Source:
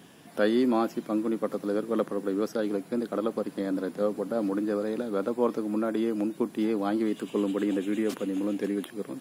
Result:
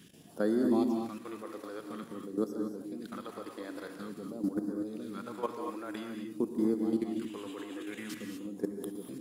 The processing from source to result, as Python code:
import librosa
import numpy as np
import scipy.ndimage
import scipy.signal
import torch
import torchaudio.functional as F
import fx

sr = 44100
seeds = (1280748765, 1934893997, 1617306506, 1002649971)

y = fx.dynamic_eq(x, sr, hz=600.0, q=1.7, threshold_db=-38.0, ratio=4.0, max_db=-5)
y = fx.phaser_stages(y, sr, stages=2, low_hz=150.0, high_hz=2700.0, hz=0.49, feedback_pct=15)
y = fx.level_steps(y, sr, step_db=14)
y = fx.rev_gated(y, sr, seeds[0], gate_ms=260, shape='rising', drr_db=3.5)